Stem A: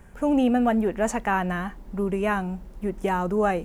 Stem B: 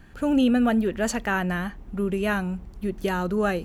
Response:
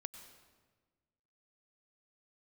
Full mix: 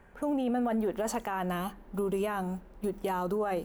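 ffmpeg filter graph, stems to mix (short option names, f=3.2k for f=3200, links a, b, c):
-filter_complex "[0:a]bass=f=250:g=-8,treble=f=4k:g=-14,bandreject=f=50:t=h:w=6,bandreject=f=100:t=h:w=6,bandreject=f=150:t=h:w=6,bandreject=f=200:t=h:w=6,volume=-2.5dB,asplit=2[a][b];[1:a]agate=range=-27dB:threshold=-31dB:ratio=16:detection=peak,acompressor=threshold=-28dB:ratio=6,aemphasis=mode=production:type=bsi,volume=1.5dB,asplit=2[c][d];[d]volume=-21.5dB[e];[b]apad=whole_len=160903[f];[c][f]sidechaincompress=threshold=-36dB:ratio=4:attack=16:release=390[g];[2:a]atrim=start_sample=2205[h];[e][h]afir=irnorm=-1:irlink=0[i];[a][g][i]amix=inputs=3:normalize=0,alimiter=limit=-23dB:level=0:latency=1:release=22"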